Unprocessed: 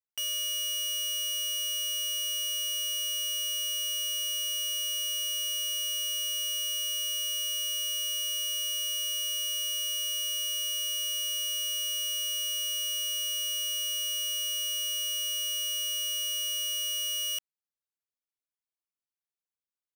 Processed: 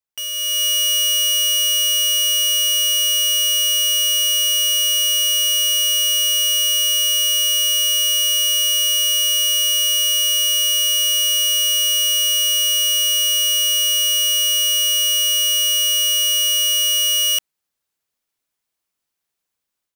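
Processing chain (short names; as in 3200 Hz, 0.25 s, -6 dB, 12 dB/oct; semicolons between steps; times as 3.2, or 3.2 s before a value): AGC gain up to 10 dB; gain +4.5 dB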